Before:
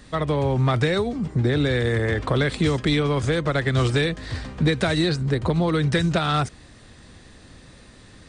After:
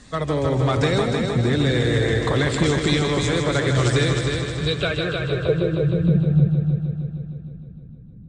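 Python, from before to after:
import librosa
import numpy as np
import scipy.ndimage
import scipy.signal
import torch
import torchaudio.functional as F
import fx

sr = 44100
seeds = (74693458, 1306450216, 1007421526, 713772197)

y = fx.spec_quant(x, sr, step_db=15)
y = fx.filter_sweep_lowpass(y, sr, from_hz=7400.0, to_hz=170.0, start_s=4.49, end_s=5.91, q=2.7)
y = fx.fixed_phaser(y, sr, hz=1300.0, stages=8, at=(4.22, 6.09))
y = fx.echo_heads(y, sr, ms=155, heads='first and second', feedback_pct=60, wet_db=-7.0)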